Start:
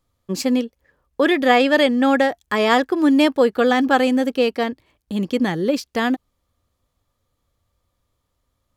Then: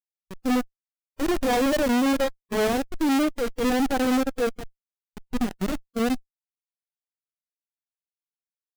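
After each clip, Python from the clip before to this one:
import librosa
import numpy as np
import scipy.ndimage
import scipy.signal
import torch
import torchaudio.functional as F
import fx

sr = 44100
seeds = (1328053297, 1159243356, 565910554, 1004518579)

y = fx.env_lowpass(x, sr, base_hz=660.0, full_db=-15.0)
y = fx.schmitt(y, sr, flips_db=-17.0)
y = fx.hpss(y, sr, part='percussive', gain_db=-15)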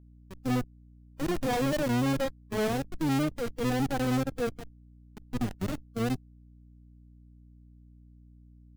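y = fx.octave_divider(x, sr, octaves=1, level_db=-2.0)
y = fx.add_hum(y, sr, base_hz=60, snr_db=22)
y = F.gain(torch.from_numpy(y), -6.5).numpy()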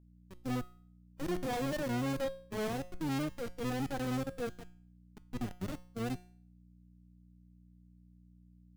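y = fx.comb_fb(x, sr, f0_hz=180.0, decay_s=0.49, harmonics='all', damping=0.0, mix_pct=60)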